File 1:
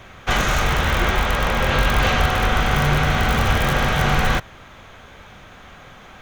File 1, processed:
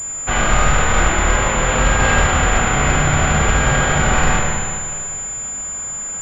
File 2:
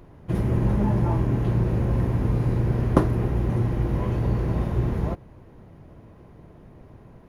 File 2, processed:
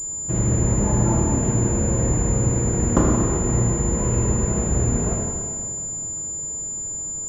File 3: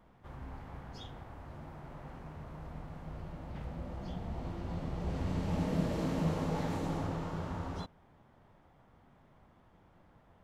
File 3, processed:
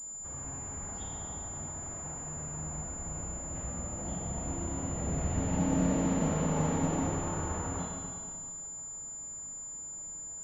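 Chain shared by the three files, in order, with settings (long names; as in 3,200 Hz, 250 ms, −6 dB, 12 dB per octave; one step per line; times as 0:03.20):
soft clipping −4.5 dBFS
four-comb reverb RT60 2.2 s, combs from 26 ms, DRR −2 dB
switching amplifier with a slow clock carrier 7,100 Hz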